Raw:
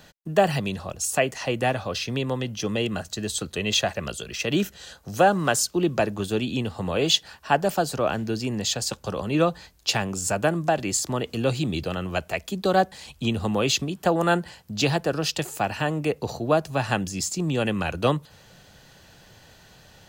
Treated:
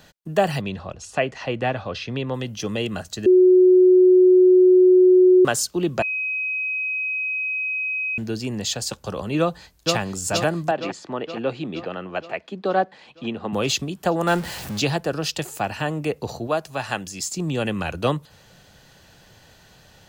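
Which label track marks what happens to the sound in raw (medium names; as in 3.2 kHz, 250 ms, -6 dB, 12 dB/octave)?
0.610000	2.340000	low-pass 3.7 kHz
3.260000	5.450000	bleep 367 Hz -9.5 dBFS
6.020000	8.180000	bleep 2.53 kHz -22.5 dBFS
9.390000	9.970000	echo throw 470 ms, feedback 65%, level -3 dB
10.710000	13.530000	band-pass 230–2500 Hz
14.270000	14.800000	jump at every zero crossing of -29 dBFS
16.470000	17.320000	bass shelf 370 Hz -9 dB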